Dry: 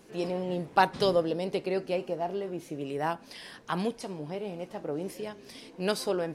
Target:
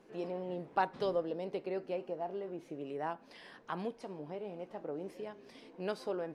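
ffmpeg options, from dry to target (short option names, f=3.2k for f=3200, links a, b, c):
-filter_complex "[0:a]lowpass=f=1.4k:p=1,equalizer=f=62:t=o:w=3:g=-11.5,asplit=2[a][b];[b]acompressor=threshold=-38dB:ratio=6,volume=-2dB[c];[a][c]amix=inputs=2:normalize=0,volume=-7.5dB"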